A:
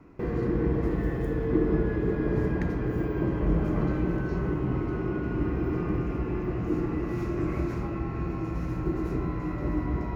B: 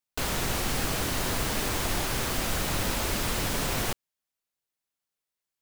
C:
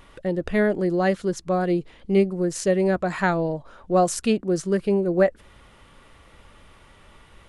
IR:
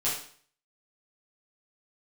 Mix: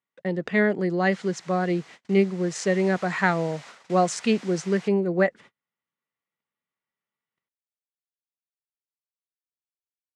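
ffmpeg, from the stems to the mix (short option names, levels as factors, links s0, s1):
-filter_complex "[1:a]highpass=f=500:w=0.5412,highpass=f=500:w=1.3066,adelay=950,volume=0.355,afade=t=in:st=2.38:d=0.34:silence=0.316228[s0];[2:a]volume=1[s1];[s0]asoftclip=type=tanh:threshold=0.0133,acompressor=threshold=0.00355:ratio=1.5,volume=1[s2];[s1][s2]amix=inputs=2:normalize=0,agate=range=0.01:threshold=0.00891:ratio=16:detection=peak,highpass=f=140:w=0.5412,highpass=f=140:w=1.3066,equalizer=f=320:t=q:w=4:g=-5,equalizer=f=580:t=q:w=4:g=-4,equalizer=f=2000:t=q:w=4:g=6,lowpass=f=7500:w=0.5412,lowpass=f=7500:w=1.3066"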